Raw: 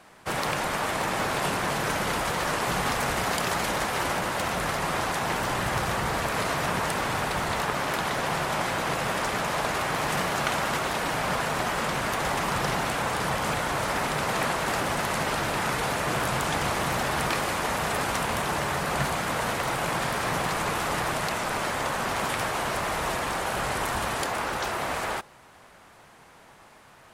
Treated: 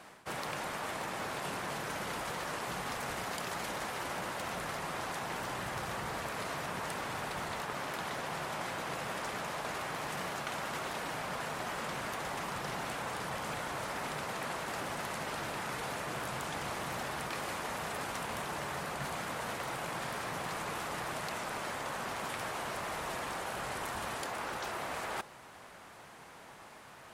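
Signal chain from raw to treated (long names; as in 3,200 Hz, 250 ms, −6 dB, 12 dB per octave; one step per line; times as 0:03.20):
low-shelf EQ 67 Hz −8.5 dB
reversed playback
downward compressor 6 to 1, threshold −36 dBFS, peak gain reduction 13.5 dB
reversed playback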